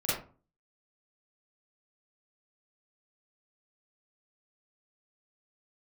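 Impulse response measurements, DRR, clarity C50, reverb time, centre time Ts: -10.5 dB, -0.5 dB, 0.40 s, 57 ms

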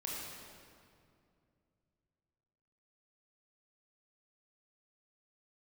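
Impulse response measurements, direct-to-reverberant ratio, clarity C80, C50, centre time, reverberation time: -4.5 dB, 0.0 dB, -1.5 dB, 0.13 s, 2.4 s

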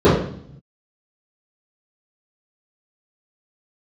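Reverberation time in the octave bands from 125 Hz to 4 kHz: 1.3, 0.90, 0.60, 0.60, 0.55, 0.65 s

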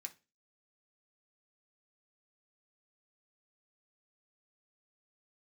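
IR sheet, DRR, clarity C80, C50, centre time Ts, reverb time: 2.0 dB, 25.5 dB, 17.5 dB, 6 ms, 0.30 s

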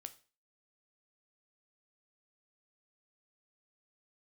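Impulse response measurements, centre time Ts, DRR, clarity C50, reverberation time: 5 ms, 9.0 dB, 16.5 dB, 0.35 s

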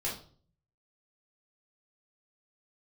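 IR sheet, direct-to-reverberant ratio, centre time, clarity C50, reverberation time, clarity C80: -7.0 dB, 31 ms, 6.5 dB, 0.45 s, 12.0 dB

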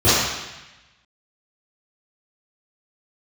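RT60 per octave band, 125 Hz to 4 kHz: 1.2, 1.0, 0.95, 1.1, 1.2, 1.1 s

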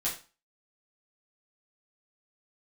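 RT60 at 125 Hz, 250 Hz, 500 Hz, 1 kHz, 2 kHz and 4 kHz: 0.30, 0.35, 0.30, 0.35, 0.30, 0.30 s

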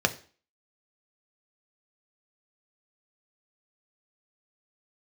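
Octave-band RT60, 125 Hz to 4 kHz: 0.35, 0.45, 0.40, 0.40, 0.40, 0.40 s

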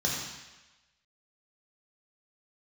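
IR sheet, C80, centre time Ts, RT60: 3.0 dB, 67 ms, 1.1 s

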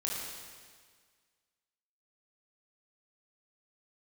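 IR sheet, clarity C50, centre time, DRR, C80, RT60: -1.0 dB, 0.103 s, -4.5 dB, 1.5 dB, 1.7 s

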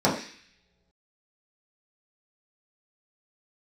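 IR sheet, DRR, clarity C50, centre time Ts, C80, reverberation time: -7.0 dB, 7.0 dB, 30 ms, 10.0 dB, not exponential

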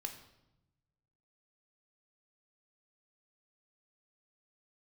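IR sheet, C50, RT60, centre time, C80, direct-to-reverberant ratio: 9.5 dB, 0.90 s, 17 ms, 12.0 dB, 4.5 dB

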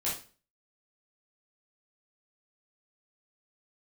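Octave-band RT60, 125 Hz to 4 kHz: 0.45, 0.45, 0.40, 0.35, 0.35, 0.35 s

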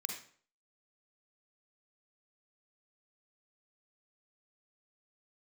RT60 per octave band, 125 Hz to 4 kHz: 0.50, 0.50, 0.50, 0.50, 0.45, 0.40 s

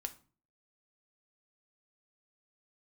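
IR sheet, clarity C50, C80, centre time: 16.0 dB, 21.5 dB, 5 ms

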